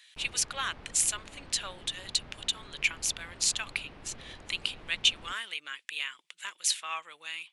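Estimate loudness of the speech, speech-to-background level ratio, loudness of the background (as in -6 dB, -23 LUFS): -31.0 LUFS, 20.0 dB, -51.0 LUFS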